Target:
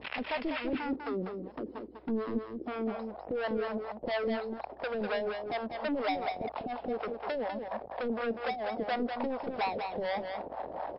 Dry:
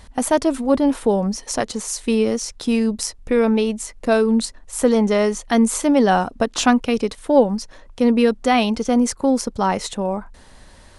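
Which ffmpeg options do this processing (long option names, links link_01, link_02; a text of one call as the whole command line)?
ffmpeg -i in.wav -filter_complex "[0:a]aeval=exprs='val(0)+0.5*0.0531*sgn(val(0))':channel_layout=same,highpass=360,acompressor=threshold=-22dB:ratio=6,asetnsamples=nb_out_samples=441:pad=0,asendcmd='0.73 lowpass f 320;2.66 lowpass f 740',lowpass=frequency=2600:width_type=q:width=3.5,asoftclip=type=hard:threshold=-25.5dB,acrossover=split=530[link_01][link_02];[link_01]aeval=exprs='val(0)*(1-1/2+1/2*cos(2*PI*4.2*n/s))':channel_layout=same[link_03];[link_02]aeval=exprs='val(0)*(1-1/2-1/2*cos(2*PI*4.2*n/s))':channel_layout=same[link_04];[link_03][link_04]amix=inputs=2:normalize=0,aeval=exprs='val(0)+0.000562*(sin(2*PI*60*n/s)+sin(2*PI*2*60*n/s)/2+sin(2*PI*3*60*n/s)/3+sin(2*PI*4*60*n/s)/4+sin(2*PI*5*60*n/s)/5)':channel_layout=same,aecho=1:1:198:0.501" -ar 12000 -c:a libmp3lame -b:a 32k out.mp3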